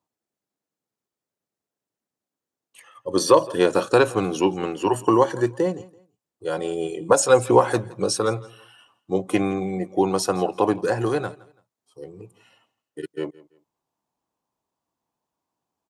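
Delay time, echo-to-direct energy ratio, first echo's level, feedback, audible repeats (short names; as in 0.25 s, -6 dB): 0.167 s, -21.0 dB, -21.5 dB, 27%, 2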